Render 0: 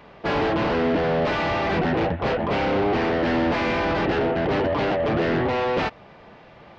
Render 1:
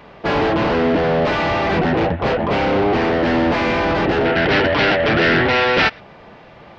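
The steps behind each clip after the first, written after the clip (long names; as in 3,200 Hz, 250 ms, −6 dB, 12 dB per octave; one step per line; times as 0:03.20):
gain on a spectral selection 0:04.25–0:06.00, 1,300–5,900 Hz +9 dB
level +5 dB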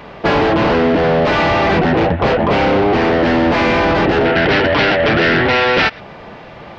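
downward compressor, threshold −18 dBFS, peak gain reduction 6.5 dB
level +7.5 dB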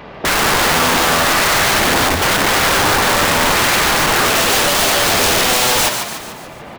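wrap-around overflow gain 11 dB
echo with shifted repeats 146 ms, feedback 50%, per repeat +100 Hz, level −6.5 dB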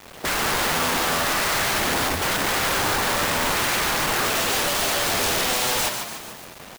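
bit reduction 5 bits
noise that follows the level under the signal 11 dB
level −9 dB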